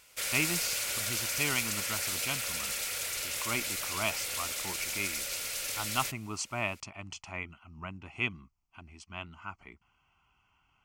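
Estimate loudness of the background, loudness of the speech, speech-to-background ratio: -32.0 LUFS, -36.5 LUFS, -4.5 dB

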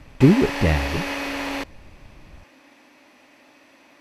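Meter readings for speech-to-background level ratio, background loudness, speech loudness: 8.0 dB, -28.0 LUFS, -20.0 LUFS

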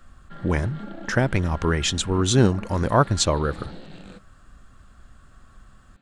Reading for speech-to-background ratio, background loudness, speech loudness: 18.0 dB, -40.5 LUFS, -22.5 LUFS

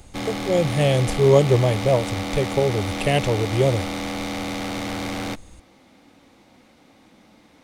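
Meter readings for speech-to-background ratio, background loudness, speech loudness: 7.5 dB, -28.5 LUFS, -21.0 LUFS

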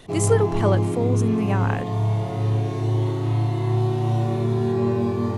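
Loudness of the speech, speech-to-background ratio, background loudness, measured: -25.0 LUFS, -2.0 dB, -23.0 LUFS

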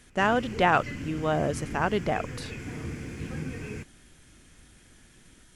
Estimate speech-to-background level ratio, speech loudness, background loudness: 11.0 dB, -27.0 LUFS, -38.0 LUFS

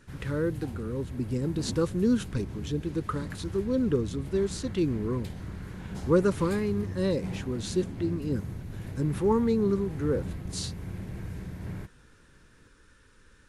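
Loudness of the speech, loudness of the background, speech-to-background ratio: -29.5 LUFS, -39.0 LUFS, 9.5 dB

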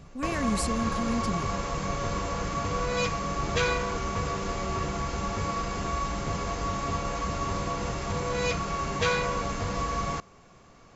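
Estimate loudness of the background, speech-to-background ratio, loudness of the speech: -30.0 LUFS, -1.5 dB, -31.5 LUFS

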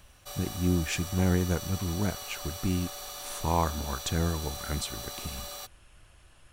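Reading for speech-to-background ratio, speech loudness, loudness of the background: 7.5 dB, -31.0 LUFS, -38.5 LUFS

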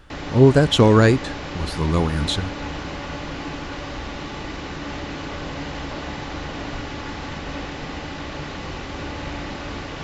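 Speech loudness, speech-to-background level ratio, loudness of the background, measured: -17.5 LUFS, 13.5 dB, -31.0 LUFS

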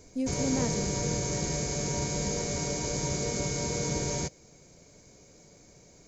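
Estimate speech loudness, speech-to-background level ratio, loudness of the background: -34.0 LUFS, -3.5 dB, -30.5 LUFS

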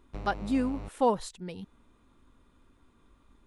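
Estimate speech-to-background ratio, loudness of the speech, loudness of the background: 12.0 dB, -31.0 LUFS, -43.0 LUFS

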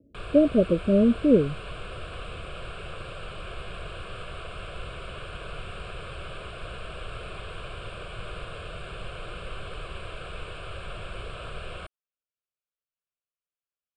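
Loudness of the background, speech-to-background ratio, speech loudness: -39.0 LUFS, 17.0 dB, -22.0 LUFS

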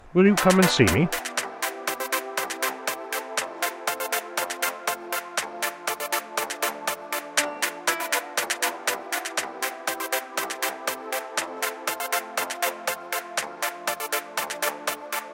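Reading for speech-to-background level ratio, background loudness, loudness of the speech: 7.5 dB, -27.5 LUFS, -20.0 LUFS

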